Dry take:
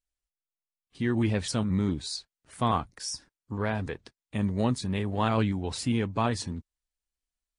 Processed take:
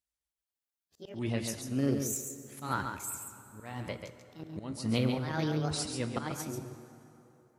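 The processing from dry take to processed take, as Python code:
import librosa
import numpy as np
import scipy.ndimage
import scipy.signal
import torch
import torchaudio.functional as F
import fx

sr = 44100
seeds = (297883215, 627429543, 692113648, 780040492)

p1 = fx.pitch_ramps(x, sr, semitones=9.0, every_ms=1141)
p2 = scipy.signal.sosfilt(scipy.signal.butter(2, 59.0, 'highpass', fs=sr, output='sos'), p1)
p3 = fx.high_shelf(p2, sr, hz=5700.0, db=2.5)
p4 = fx.auto_swell(p3, sr, attack_ms=318.0)
p5 = fx.tremolo_random(p4, sr, seeds[0], hz=3.5, depth_pct=55)
p6 = p5 + fx.echo_single(p5, sr, ms=138, db=-6.5, dry=0)
p7 = fx.rev_plate(p6, sr, seeds[1], rt60_s=3.3, hf_ratio=0.65, predelay_ms=0, drr_db=11.0)
y = F.gain(torch.from_numpy(p7), 2.0).numpy()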